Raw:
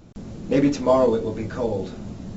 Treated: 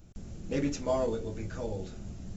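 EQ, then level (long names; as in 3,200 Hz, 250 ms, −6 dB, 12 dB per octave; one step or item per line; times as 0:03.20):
graphic EQ with 10 bands 125 Hz −6 dB, 250 Hz −10 dB, 500 Hz −8 dB, 1,000 Hz −11 dB, 2,000 Hz −5 dB, 4,000 Hz −8 dB
0.0 dB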